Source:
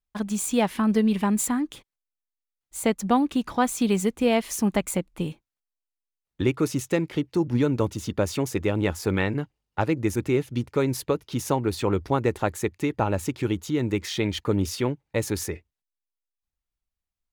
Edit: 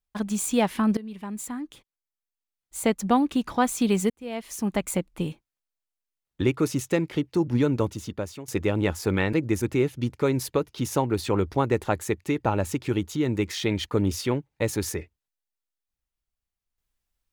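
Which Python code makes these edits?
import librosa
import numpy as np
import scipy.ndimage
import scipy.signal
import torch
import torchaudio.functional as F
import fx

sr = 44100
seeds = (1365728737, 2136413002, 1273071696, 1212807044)

y = fx.edit(x, sr, fx.fade_in_from(start_s=0.97, length_s=1.88, floor_db=-19.5),
    fx.fade_in_span(start_s=4.1, length_s=0.87),
    fx.fade_out_to(start_s=7.75, length_s=0.73, floor_db=-18.5),
    fx.cut(start_s=9.33, length_s=0.54), tone=tone)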